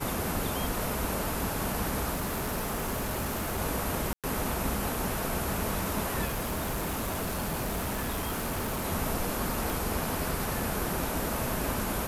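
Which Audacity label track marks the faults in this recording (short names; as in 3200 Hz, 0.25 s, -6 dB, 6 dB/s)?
2.130000	3.600000	clipped -27.5 dBFS
4.130000	4.240000	gap 0.107 s
6.250000	8.860000	clipped -28 dBFS
9.700000	9.700000	pop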